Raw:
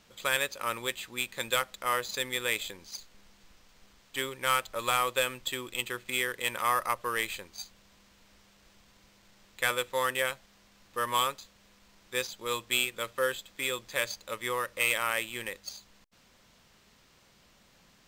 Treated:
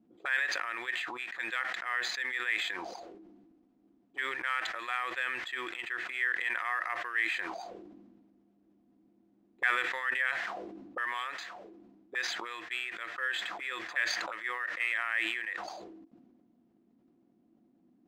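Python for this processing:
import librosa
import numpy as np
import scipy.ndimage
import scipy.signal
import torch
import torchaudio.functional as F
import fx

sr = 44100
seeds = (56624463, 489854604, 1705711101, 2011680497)

y = fx.small_body(x, sr, hz=(330.0, 710.0), ring_ms=60, db=14)
y = fx.auto_wah(y, sr, base_hz=220.0, top_hz=1800.0, q=5.4, full_db=-32.5, direction='up')
y = fx.sustainer(y, sr, db_per_s=33.0)
y = F.gain(torch.from_numpy(y), 4.0).numpy()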